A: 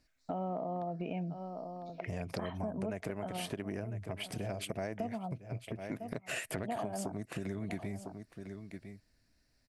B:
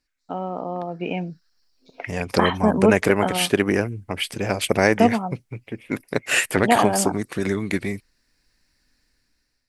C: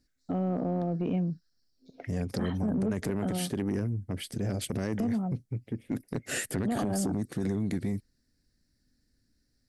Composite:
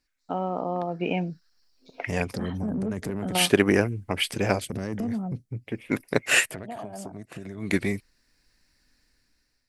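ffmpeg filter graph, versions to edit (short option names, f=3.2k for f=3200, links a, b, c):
-filter_complex "[2:a]asplit=2[a][b];[1:a]asplit=4[c][d][e][f];[c]atrim=end=2.332[g];[a]atrim=start=2.328:end=3.352[h];[d]atrim=start=3.348:end=4.602[i];[b]atrim=start=4.598:end=5.682[j];[e]atrim=start=5.678:end=6.54[k];[0:a]atrim=start=6.38:end=7.73[l];[f]atrim=start=7.57[m];[g][h]acrossfade=d=0.004:c1=hsin:c2=hsin[n];[n][i]acrossfade=d=0.004:c1=hsin:c2=hsin[o];[o][j]acrossfade=d=0.004:c1=hsin:c2=hsin[p];[p][k]acrossfade=d=0.004:c1=hsin:c2=hsin[q];[q][l]acrossfade=d=0.16:c1=tri:c2=tri[r];[r][m]acrossfade=d=0.16:c1=tri:c2=tri"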